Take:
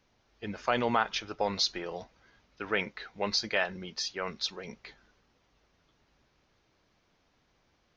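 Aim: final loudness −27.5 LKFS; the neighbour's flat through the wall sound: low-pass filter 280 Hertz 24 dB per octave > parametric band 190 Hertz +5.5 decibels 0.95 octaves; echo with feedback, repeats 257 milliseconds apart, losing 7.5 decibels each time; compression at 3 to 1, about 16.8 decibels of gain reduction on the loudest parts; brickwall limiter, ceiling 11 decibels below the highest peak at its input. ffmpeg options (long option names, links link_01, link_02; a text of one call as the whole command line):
ffmpeg -i in.wav -af "acompressor=threshold=-47dB:ratio=3,alimiter=level_in=14dB:limit=-24dB:level=0:latency=1,volume=-14dB,lowpass=frequency=280:width=0.5412,lowpass=frequency=280:width=1.3066,equalizer=frequency=190:width_type=o:width=0.95:gain=5.5,aecho=1:1:257|514|771|1028|1285:0.422|0.177|0.0744|0.0312|0.0131,volume=27dB" out.wav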